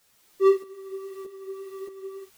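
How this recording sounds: a quantiser's noise floor 10-bit, dither triangular; tremolo saw up 1.6 Hz, depth 65%; a shimmering, thickened sound

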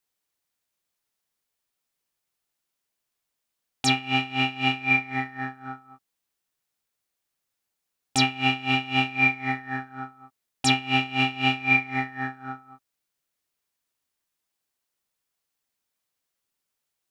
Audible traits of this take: noise floor -83 dBFS; spectral tilt -3.5 dB/oct

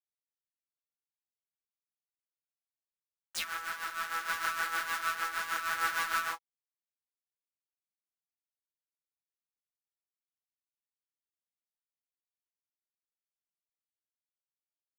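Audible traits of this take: a quantiser's noise floor 12-bit, dither none; random-step tremolo; aliases and images of a low sample rate 16000 Hz, jitter 0%; a shimmering, thickened sound

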